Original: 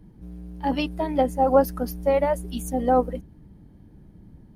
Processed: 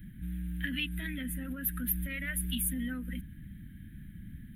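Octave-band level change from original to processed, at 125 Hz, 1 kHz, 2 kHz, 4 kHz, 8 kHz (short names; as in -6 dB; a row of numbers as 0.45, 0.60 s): -3.5, -33.0, +1.0, -0.5, +4.5 dB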